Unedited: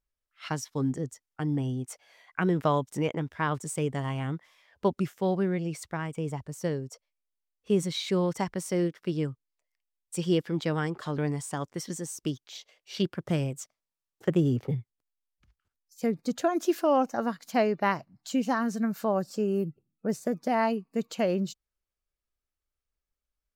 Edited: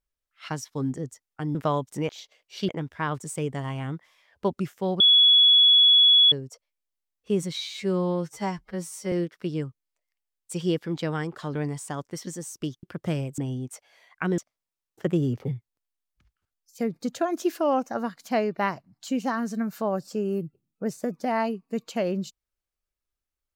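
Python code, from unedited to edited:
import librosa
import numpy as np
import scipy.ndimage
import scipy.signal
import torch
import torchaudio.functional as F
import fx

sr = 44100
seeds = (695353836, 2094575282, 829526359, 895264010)

y = fx.edit(x, sr, fx.move(start_s=1.55, length_s=1.0, to_s=13.61),
    fx.bleep(start_s=5.4, length_s=1.32, hz=3380.0, db=-13.0),
    fx.stretch_span(start_s=7.98, length_s=0.77, factor=2.0),
    fx.move(start_s=12.46, length_s=0.6, to_s=3.09), tone=tone)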